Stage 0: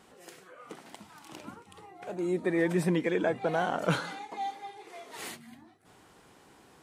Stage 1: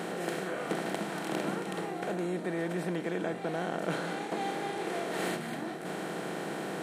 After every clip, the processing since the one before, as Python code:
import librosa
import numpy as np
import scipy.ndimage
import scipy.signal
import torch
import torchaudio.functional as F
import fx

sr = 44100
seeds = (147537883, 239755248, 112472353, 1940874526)

y = fx.bin_compress(x, sr, power=0.4)
y = fx.low_shelf_res(y, sr, hz=130.0, db=-13.5, q=1.5)
y = fx.rider(y, sr, range_db=4, speed_s=0.5)
y = y * librosa.db_to_amplitude(-7.0)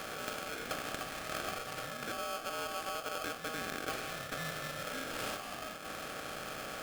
y = x * np.sign(np.sin(2.0 * np.pi * 950.0 * np.arange(len(x)) / sr))
y = y * librosa.db_to_amplitude(-6.0)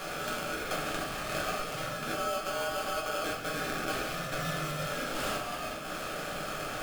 y = fx.room_shoebox(x, sr, seeds[0], volume_m3=53.0, walls='mixed', distance_m=1.0)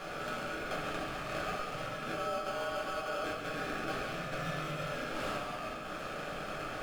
y = fx.rattle_buzz(x, sr, strikes_db=-44.0, level_db=-34.0)
y = fx.lowpass(y, sr, hz=2900.0, slope=6)
y = y + 10.0 ** (-8.0 / 20.0) * np.pad(y, (int(136 * sr / 1000.0), 0))[:len(y)]
y = y * librosa.db_to_amplitude(-3.0)